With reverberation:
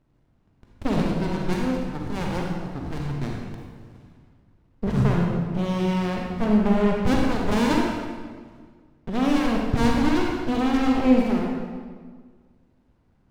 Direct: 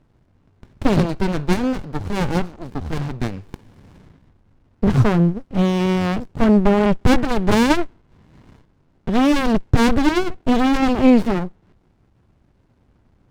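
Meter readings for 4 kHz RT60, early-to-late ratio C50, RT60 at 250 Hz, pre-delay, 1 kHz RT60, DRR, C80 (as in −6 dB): 1.3 s, 0.0 dB, 1.9 s, 35 ms, 1.6 s, −1.0 dB, 2.0 dB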